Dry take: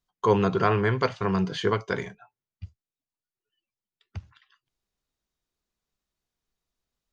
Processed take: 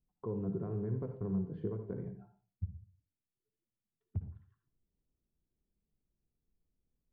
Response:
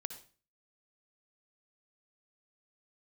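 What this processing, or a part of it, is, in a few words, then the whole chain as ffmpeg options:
television next door: -filter_complex "[0:a]acompressor=threshold=0.0158:ratio=5,lowpass=320[s0];[1:a]atrim=start_sample=2205[s1];[s0][s1]afir=irnorm=-1:irlink=0,volume=2.24"

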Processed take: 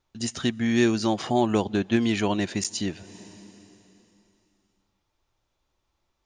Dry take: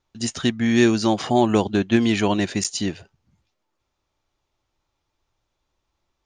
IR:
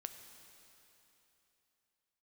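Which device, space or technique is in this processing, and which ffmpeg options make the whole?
ducked reverb: -filter_complex "[0:a]asplit=3[s0][s1][s2];[1:a]atrim=start_sample=2205[s3];[s1][s3]afir=irnorm=-1:irlink=0[s4];[s2]apad=whole_len=275808[s5];[s4][s5]sidechaincompress=threshold=0.0224:ratio=16:attack=7.7:release=261,volume=1.06[s6];[s0][s6]amix=inputs=2:normalize=0,volume=0.562"

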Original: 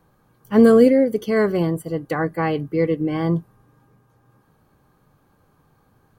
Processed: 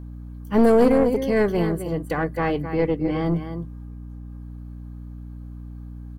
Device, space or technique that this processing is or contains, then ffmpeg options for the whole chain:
valve amplifier with mains hum: -filter_complex "[0:a]asettb=1/sr,asplit=3[s0][s1][s2];[s0]atrim=end=2.744[s3];[s1]atrim=start=2.74:end=3.26,asetpts=PTS-STARTPTS,afade=t=in:d=0.004:c=qsin,afade=t=out:st=0.516:d=0.004:c=qsin,lowpass=8500[s4];[s2]atrim=start=3.256[s5];[s3][s4]acrossfade=d=0.004:c1=hsin:c2=qsin[s6];[s6][s5]acrossfade=d=0.004:c1=qsin:c2=hsin,aecho=1:1:262:0.316,aeval=exprs='(tanh(3.16*val(0)+0.4)-tanh(0.4))/3.16':c=same,aeval=exprs='val(0)+0.0178*(sin(2*PI*60*n/s)+sin(2*PI*2*60*n/s)/2+sin(2*PI*3*60*n/s)/3+sin(2*PI*4*60*n/s)/4+sin(2*PI*5*60*n/s)/5)':c=same"

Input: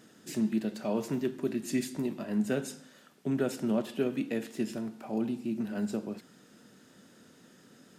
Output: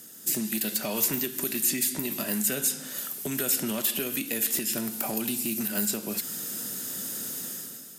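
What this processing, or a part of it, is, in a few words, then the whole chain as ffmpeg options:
FM broadcast chain: -filter_complex "[0:a]highpass=54,dynaudnorm=f=110:g=9:m=4.47,acrossover=split=1400|3600[s0][s1][s2];[s0]acompressor=threshold=0.0316:ratio=4[s3];[s1]acompressor=threshold=0.0141:ratio=4[s4];[s2]acompressor=threshold=0.00501:ratio=4[s5];[s3][s4][s5]amix=inputs=3:normalize=0,aemphasis=mode=production:type=50fm,alimiter=limit=0.0891:level=0:latency=1:release=166,asoftclip=type=hard:threshold=0.0596,lowpass=f=15000:w=0.5412,lowpass=f=15000:w=1.3066,aemphasis=mode=production:type=50fm"

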